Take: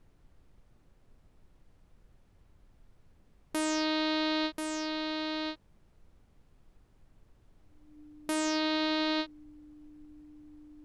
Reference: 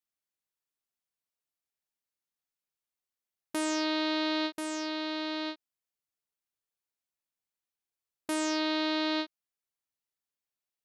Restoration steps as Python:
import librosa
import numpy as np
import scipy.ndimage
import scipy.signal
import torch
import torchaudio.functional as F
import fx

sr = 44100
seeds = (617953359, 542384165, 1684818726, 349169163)

y = fx.notch(x, sr, hz=300.0, q=30.0)
y = fx.noise_reduce(y, sr, print_start_s=5.57, print_end_s=6.07, reduce_db=29.0)